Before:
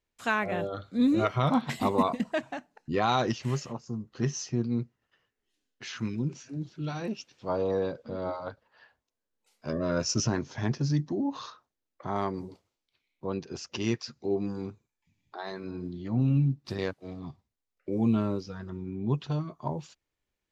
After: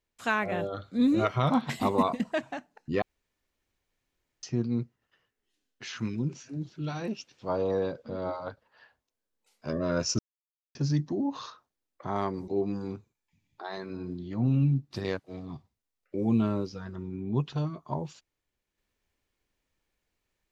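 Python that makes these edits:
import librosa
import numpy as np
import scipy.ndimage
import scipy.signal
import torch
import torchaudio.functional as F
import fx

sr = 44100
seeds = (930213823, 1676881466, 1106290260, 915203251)

y = fx.edit(x, sr, fx.room_tone_fill(start_s=3.02, length_s=1.41),
    fx.silence(start_s=10.19, length_s=0.56),
    fx.cut(start_s=12.48, length_s=1.74), tone=tone)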